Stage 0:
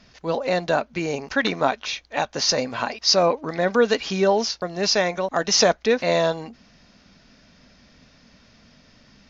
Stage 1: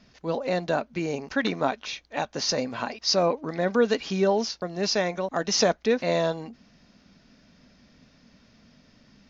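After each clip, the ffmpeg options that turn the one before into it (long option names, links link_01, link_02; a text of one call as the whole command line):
ffmpeg -i in.wav -af "equalizer=frequency=230:width_type=o:width=2:gain=5,volume=-6dB" out.wav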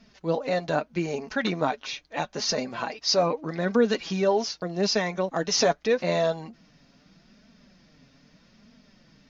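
ffmpeg -i in.wav -af "flanger=delay=4.3:depth=3.2:regen=28:speed=0.8:shape=triangular,volume=3.5dB" out.wav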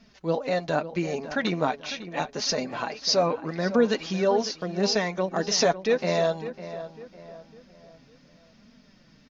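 ffmpeg -i in.wav -filter_complex "[0:a]asplit=2[link_01][link_02];[link_02]adelay=552,lowpass=frequency=2500:poles=1,volume=-12.5dB,asplit=2[link_03][link_04];[link_04]adelay=552,lowpass=frequency=2500:poles=1,volume=0.4,asplit=2[link_05][link_06];[link_06]adelay=552,lowpass=frequency=2500:poles=1,volume=0.4,asplit=2[link_07][link_08];[link_08]adelay=552,lowpass=frequency=2500:poles=1,volume=0.4[link_09];[link_01][link_03][link_05][link_07][link_09]amix=inputs=5:normalize=0" out.wav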